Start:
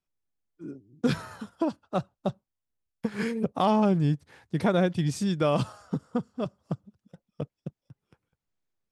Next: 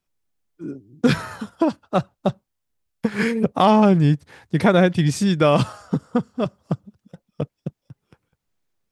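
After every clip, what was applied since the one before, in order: dynamic EQ 2000 Hz, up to +4 dB, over -48 dBFS, Q 1.5; gain +8 dB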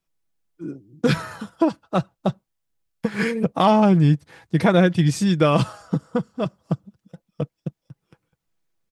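comb 6.1 ms, depth 34%; gain -1.5 dB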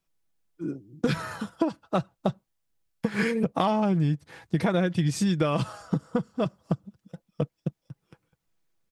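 compressor 6:1, threshold -21 dBFS, peak gain reduction 9.5 dB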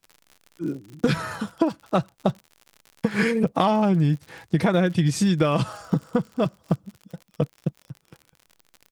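crackle 71/s -39 dBFS; gain +4 dB

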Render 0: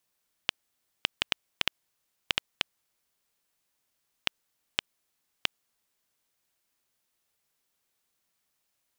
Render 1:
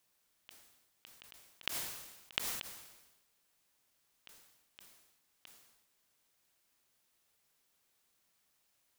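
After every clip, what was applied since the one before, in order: auto swell 0.182 s; sustainer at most 50 dB/s; gain +2 dB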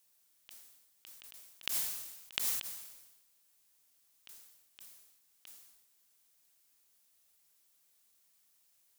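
high shelf 4300 Hz +11.5 dB; gain -4 dB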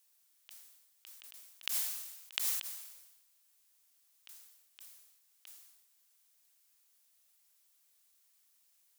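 HPF 760 Hz 6 dB/oct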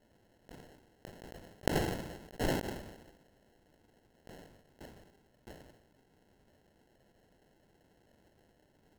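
sample-and-hold 37×; gain +3 dB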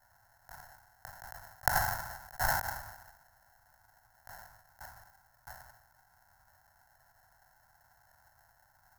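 EQ curve 110 Hz 0 dB, 210 Hz -18 dB, 430 Hz -26 dB, 750 Hz +8 dB, 1500 Hz +13 dB, 2900 Hz -13 dB, 5500 Hz +8 dB, 8200 Hz +5 dB, 13000 Hz +15 dB

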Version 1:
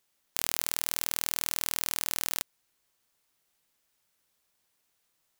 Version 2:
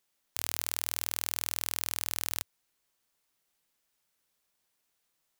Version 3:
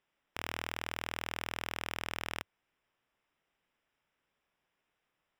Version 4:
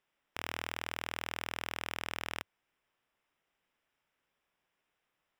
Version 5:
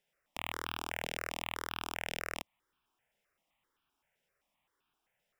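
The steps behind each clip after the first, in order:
bell 91 Hz -4.5 dB 0.39 oct; gain -3 dB
polynomial smoothing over 25 samples; gain +3 dB
low shelf 340 Hz -2.5 dB
step phaser 7.7 Hz 310–2000 Hz; gain +3.5 dB

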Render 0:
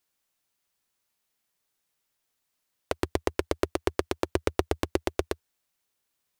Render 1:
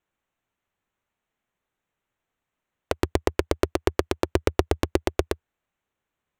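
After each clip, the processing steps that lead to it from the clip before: Wiener smoothing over 9 samples; low shelf 160 Hz +4 dB; gain +3.5 dB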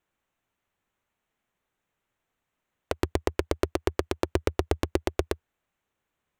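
limiter -9 dBFS, peak gain reduction 7.5 dB; gain +1.5 dB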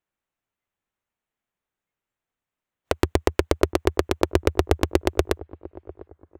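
dark delay 0.7 s, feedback 32%, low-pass 880 Hz, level -18 dB; spectral noise reduction 13 dB; gain +6 dB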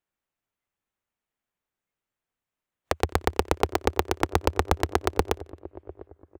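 feedback echo 90 ms, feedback 50%, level -24 dB; Doppler distortion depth 0.97 ms; gain -1.5 dB

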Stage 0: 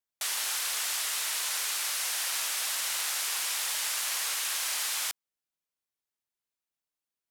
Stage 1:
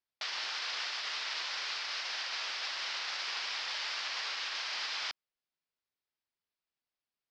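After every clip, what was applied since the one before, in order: limiter -23 dBFS, peak gain reduction 4.5 dB; elliptic low-pass 5100 Hz, stop band 70 dB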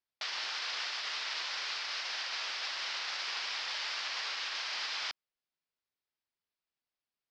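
nothing audible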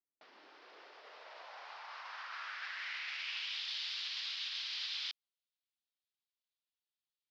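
band-pass sweep 280 Hz -> 3600 Hz, 0.37–3.69; gain +1 dB

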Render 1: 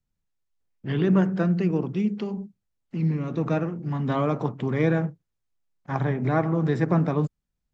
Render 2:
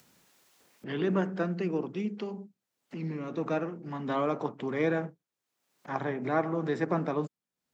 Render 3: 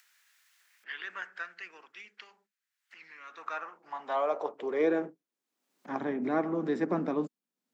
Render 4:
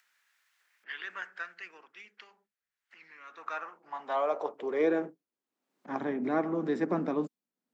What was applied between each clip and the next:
HPF 270 Hz 12 dB/oct; upward compressor, threshold -37 dBFS; gain -3 dB
high-pass sweep 1700 Hz -> 240 Hz, 3.15–5.38; gain -3.5 dB
mismatched tape noise reduction decoder only

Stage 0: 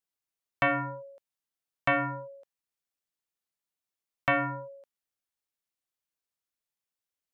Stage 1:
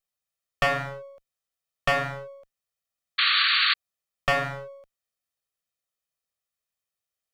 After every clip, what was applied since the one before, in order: minimum comb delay 1.6 ms; painted sound noise, 3.18–3.74, 1100–4600 Hz -25 dBFS; gain +3.5 dB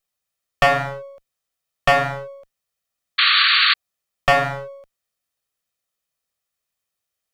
dynamic EQ 770 Hz, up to +6 dB, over -42 dBFS, Q 3; gain +6 dB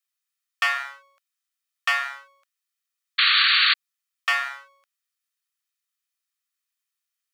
HPF 1200 Hz 24 dB/oct; gain -2.5 dB

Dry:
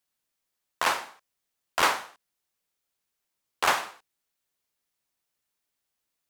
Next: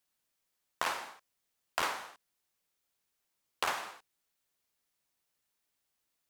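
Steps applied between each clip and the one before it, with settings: compressor 6:1, threshold -30 dBFS, peak gain reduction 12 dB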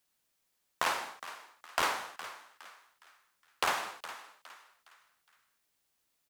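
in parallel at -5.5 dB: hard clip -29.5 dBFS, distortion -8 dB; on the sum: frequency-shifting echo 0.413 s, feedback 37%, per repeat +97 Hz, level -14 dB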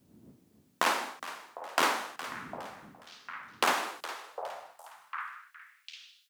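wind noise 97 Hz -55 dBFS; delay with a stepping band-pass 0.753 s, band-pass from 610 Hz, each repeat 1.4 oct, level -9.5 dB; high-pass sweep 240 Hz -> 3000 Hz, 3.74–6.17; gain +3 dB

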